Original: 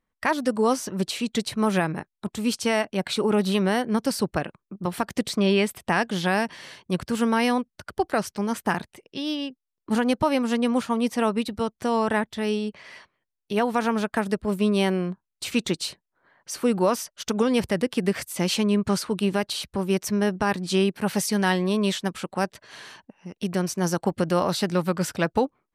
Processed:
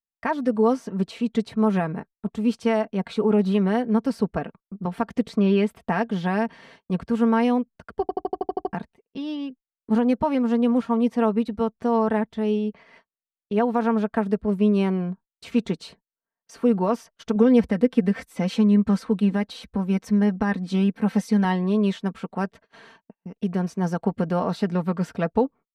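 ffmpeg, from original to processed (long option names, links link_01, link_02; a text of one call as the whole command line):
ffmpeg -i in.wav -filter_complex "[0:a]asettb=1/sr,asplit=3[link_01][link_02][link_03];[link_01]atrim=end=17.354[link_04];[link_02]atrim=start=17.35:end=21.45,asetpts=PTS-STARTPTS,afade=type=in:duration=0.004:curve=qsin,afade=type=out:start_time=4.096:duration=0.004:curve=qsin,aecho=1:1:3.9:0.55,atrim=end_sample=180810[link_05];[link_03]atrim=start=21.446[link_06];[link_04][link_05]acrossfade=duration=0.004:curve1=hsin:curve2=qsin[link_07];[link_07][link_06]acrossfade=duration=0.004:curve1=qsin:curve2=hsin,asplit=10[link_08][link_09][link_10][link_11][link_12][link_13][link_14][link_15][link_16][link_17];[link_08]atrim=end=8.092[link_18];[link_09]atrim=start=8.008:end=8.092[link_19];[link_10]atrim=start=8.008:end=8.092[link_20];[link_11]atrim=start=8.008:end=8.092[link_21];[link_12]atrim=start=8.008:end=8.092[link_22];[link_13]atrim=start=8.008:end=8.092[link_23];[link_14]atrim=start=8.008:end=8.092[link_24];[link_15]atrim=start=8.008:end=8.092[link_25];[link_16]atrim=start=8.008:end=8.092[link_26];[link_17]atrim=start=8.728[link_27];[link_18][link_19]acrossfade=duration=0.004:curve1=hsin:curve2=hsin[link_28];[link_28][link_20]acrossfade=duration=0.004:curve1=hsin:curve2=hsin[link_29];[link_29][link_21]acrossfade=duration=0.004:curve1=hsin:curve2=hsin[link_30];[link_30][link_22]acrossfade=duration=0.004:curve1=hsin:curve2=hsin[link_31];[link_31][link_23]acrossfade=duration=0.004:curve1=hsin:curve2=hsin[link_32];[link_32][link_24]acrossfade=duration=0.004:curve1=hsin:curve2=hsin[link_33];[link_33][link_25]acrossfade=duration=0.004:curve1=hsin:curve2=hsin[link_34];[link_34][link_26]acrossfade=duration=0.004:curve1=hsin:curve2=hsin[link_35];[link_35][link_27]acrossfade=duration=0.004:curve1=hsin:curve2=hsin,agate=range=-29dB:threshold=-44dB:ratio=16:detection=peak,lowpass=frequency=1000:poles=1,aecho=1:1:4.4:0.53" out.wav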